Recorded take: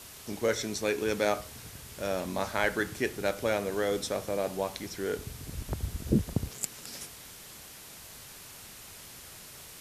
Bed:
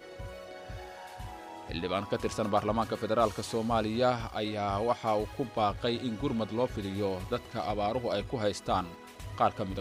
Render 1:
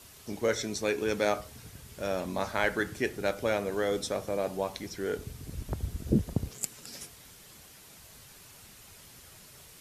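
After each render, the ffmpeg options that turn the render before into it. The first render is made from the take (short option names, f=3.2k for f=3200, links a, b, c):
-af "afftdn=nr=6:nf=-48"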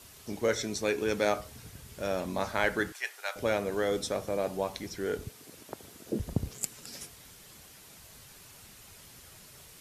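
-filter_complex "[0:a]asettb=1/sr,asplit=3[a][b][c];[a]atrim=end=2.924[d];[b]atrim=start=2.92:end=3.36,asetpts=PTS-STARTPTS,afade=t=in:d=0.004:c=qsin,afade=t=out:st=0.436:d=0.004:c=qsin,highpass=f=810:w=0.5412,highpass=f=810:w=1.3066[e];[c]atrim=start=3.356[f];[d][e]acrossfade=d=0.004:c1=hsin:c2=qsin[g];[g][f]acrossfade=d=0.004:c1=qsin:c2=hsin,asettb=1/sr,asplit=3[h][i][j];[h]atrim=end=5.294[k];[i]atrim=start=5.29:end=6.2,asetpts=PTS-STARTPTS,afade=t=in:d=0.004:c=qsin,afade=t=out:st=0.906:d=0.004:c=qsin,highpass=370[l];[j]atrim=start=6.196[m];[k][l]acrossfade=d=0.004:c1=hsin:c2=qsin[n];[n][m]acrossfade=d=0.004:c1=qsin:c2=hsin"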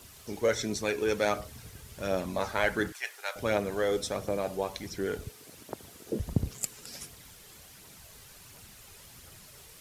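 -af "acrusher=bits=10:mix=0:aa=0.000001,aphaser=in_gain=1:out_gain=1:delay=2.6:decay=0.33:speed=1.4:type=triangular"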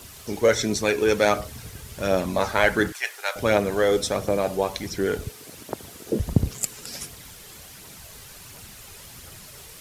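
-af "volume=8dB,alimiter=limit=-3dB:level=0:latency=1"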